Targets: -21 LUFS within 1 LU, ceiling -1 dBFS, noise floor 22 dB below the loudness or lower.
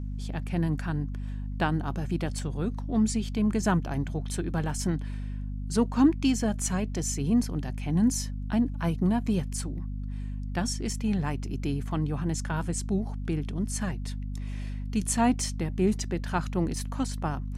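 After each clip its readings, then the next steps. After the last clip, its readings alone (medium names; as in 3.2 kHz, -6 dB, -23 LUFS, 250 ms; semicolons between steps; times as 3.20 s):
hum 50 Hz; highest harmonic 250 Hz; hum level -31 dBFS; loudness -29.5 LUFS; peak level -11.0 dBFS; loudness target -21.0 LUFS
-> de-hum 50 Hz, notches 5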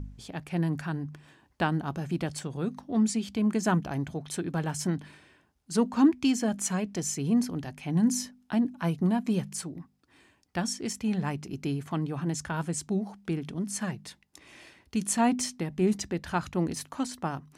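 hum not found; loudness -30.0 LUFS; peak level -11.0 dBFS; loudness target -21.0 LUFS
-> trim +9 dB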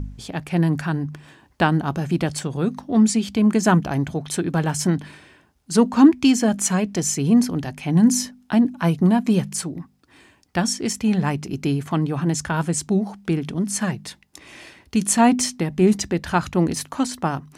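loudness -21.0 LUFS; peak level -2.0 dBFS; noise floor -58 dBFS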